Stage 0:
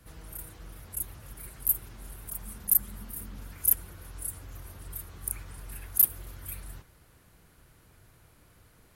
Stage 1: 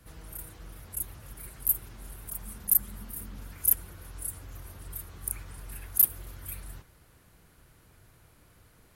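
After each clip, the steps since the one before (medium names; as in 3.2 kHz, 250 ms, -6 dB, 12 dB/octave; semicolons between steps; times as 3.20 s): no audible change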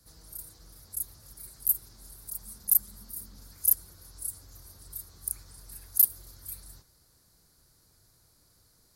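resonant high shelf 3.6 kHz +8.5 dB, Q 3; trim -8.5 dB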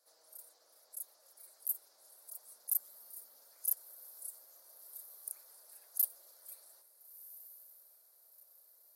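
ladder high-pass 520 Hz, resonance 60%; echo that smears into a reverb 1373 ms, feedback 43%, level -15.5 dB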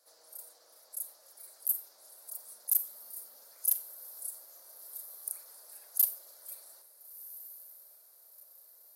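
overload inside the chain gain 17.5 dB; reverberation RT60 0.30 s, pre-delay 29 ms, DRR 10.5 dB; trim +5.5 dB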